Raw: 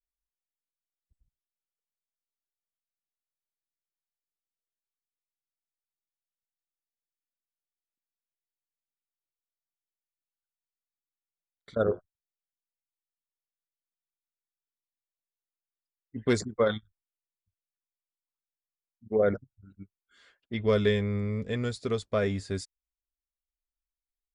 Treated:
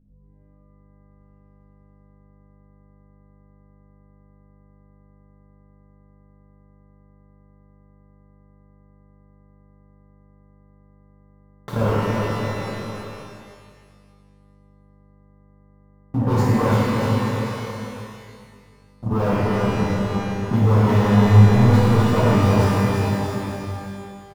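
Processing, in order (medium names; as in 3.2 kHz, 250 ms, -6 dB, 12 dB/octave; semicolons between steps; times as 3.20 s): CVSD coder 64 kbps; treble shelf 5.6 kHz -11.5 dB; waveshaping leveller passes 5; compression 6:1, threshold -31 dBFS, peak gain reduction 13.5 dB; graphic EQ 125/500/1000/2000/4000/8000 Hz +10/-5/+11/-12/-5/-7 dB; bouncing-ball echo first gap 340 ms, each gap 0.85×, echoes 5; hum 50 Hz, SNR 27 dB; pitch-shifted reverb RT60 1.6 s, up +12 st, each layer -8 dB, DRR -7 dB; trim +2.5 dB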